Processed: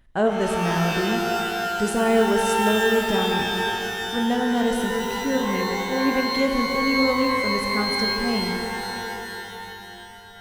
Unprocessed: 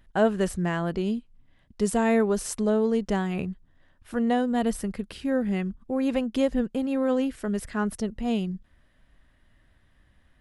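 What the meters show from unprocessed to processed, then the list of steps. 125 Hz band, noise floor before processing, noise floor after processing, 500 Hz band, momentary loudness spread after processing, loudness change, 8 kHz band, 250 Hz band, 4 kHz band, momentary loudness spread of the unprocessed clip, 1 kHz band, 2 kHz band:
+2.0 dB, -63 dBFS, -41 dBFS, +4.0 dB, 12 LU, +4.5 dB, +5.5 dB, +2.0 dB, +16.5 dB, 9 LU, +10.0 dB, +12.5 dB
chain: pitch-shifted reverb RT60 3.1 s, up +12 st, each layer -2 dB, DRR 2.5 dB

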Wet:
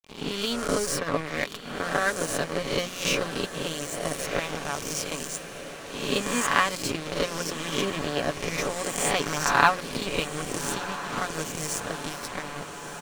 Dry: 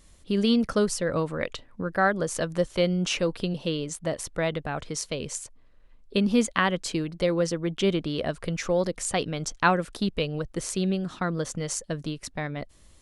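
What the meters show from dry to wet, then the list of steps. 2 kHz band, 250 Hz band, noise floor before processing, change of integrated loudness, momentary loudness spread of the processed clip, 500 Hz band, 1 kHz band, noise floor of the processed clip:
+3.5 dB, -6.0 dB, -55 dBFS, -0.5 dB, 10 LU, -2.5 dB, +3.0 dB, -40 dBFS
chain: reverse spectral sustain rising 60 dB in 1.32 s; expander -33 dBFS; hum notches 60/120/180 Hz; comb 7 ms, depth 65%; harmonic-percussive split percussive +9 dB; peaking EQ 220 Hz +3 dB 0.36 oct; crossover distortion -24 dBFS; small resonant body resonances 1.1/2.4 kHz, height 6 dB; on a send: echo that smears into a reverb 1324 ms, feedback 69%, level -12 dB; on the sum: trim -6 dB

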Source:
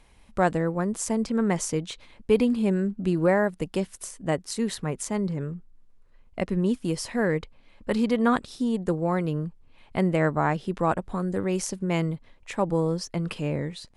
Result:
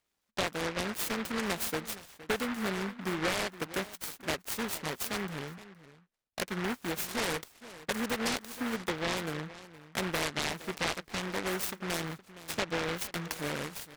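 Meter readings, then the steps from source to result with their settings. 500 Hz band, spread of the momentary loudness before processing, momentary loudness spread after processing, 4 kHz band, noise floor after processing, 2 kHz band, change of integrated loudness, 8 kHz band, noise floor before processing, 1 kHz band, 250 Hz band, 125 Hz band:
-10.0 dB, 11 LU, 9 LU, +4.0 dB, -72 dBFS, 0.0 dB, -7.5 dB, -2.5 dB, -56 dBFS, -7.0 dB, -11.5 dB, -13.0 dB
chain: high-pass 620 Hz 6 dB/octave; gate -56 dBFS, range -18 dB; compression, threshold -28 dBFS, peak gain reduction 9.5 dB; echo from a far wall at 80 m, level -16 dB; delay time shaken by noise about 1.3 kHz, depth 0.3 ms

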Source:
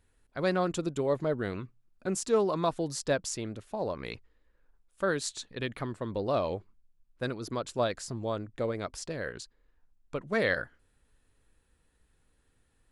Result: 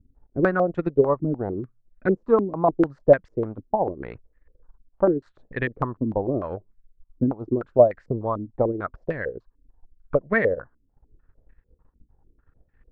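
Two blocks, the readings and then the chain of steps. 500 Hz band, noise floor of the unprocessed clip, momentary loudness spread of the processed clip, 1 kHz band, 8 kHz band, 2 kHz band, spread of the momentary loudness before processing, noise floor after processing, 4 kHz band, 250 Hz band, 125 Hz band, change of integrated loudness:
+9.0 dB, -71 dBFS, 14 LU, +7.5 dB, under -35 dB, +5.0 dB, 12 LU, -69 dBFS, under -15 dB, +9.0 dB, +7.5 dB, +8.5 dB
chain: tilt EQ -2 dB/octave; transient shaper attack +7 dB, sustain -8 dB; step-sequenced low-pass 6.7 Hz 270–1900 Hz; trim -1 dB

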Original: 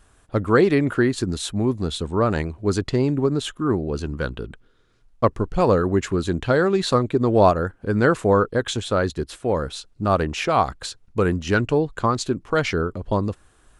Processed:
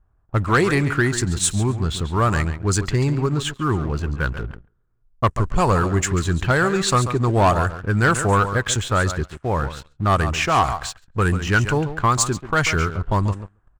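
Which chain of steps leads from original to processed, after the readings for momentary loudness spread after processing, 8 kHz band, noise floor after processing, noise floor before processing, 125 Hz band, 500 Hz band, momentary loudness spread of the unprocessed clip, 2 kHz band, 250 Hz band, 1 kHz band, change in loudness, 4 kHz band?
7 LU, +10.5 dB, -61 dBFS, -57 dBFS, +5.0 dB, -3.5 dB, 9 LU, +5.5 dB, -1.5 dB, +3.5 dB, +1.5 dB, +3.0 dB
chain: ten-band graphic EQ 250 Hz -9 dB, 500 Hz -10 dB, 4 kHz -7 dB, 8 kHz +11 dB; on a send: feedback delay 139 ms, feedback 16%, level -12 dB; on the sum: level-controlled noise filter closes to 680 Hz, open at -19.5 dBFS; waveshaping leveller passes 2

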